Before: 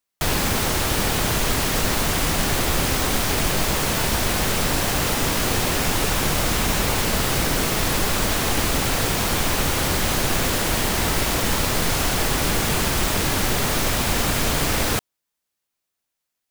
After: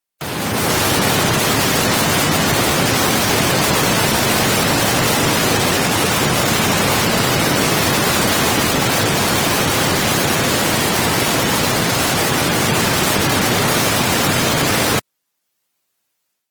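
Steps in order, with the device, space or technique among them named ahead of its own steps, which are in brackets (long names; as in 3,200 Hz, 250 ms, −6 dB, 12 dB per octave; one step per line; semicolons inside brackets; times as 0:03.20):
noise-suppressed video call (high-pass filter 100 Hz 24 dB per octave; gate on every frequency bin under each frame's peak −20 dB strong; automatic gain control gain up to 11 dB; level −1 dB; Opus 24 kbit/s 48,000 Hz)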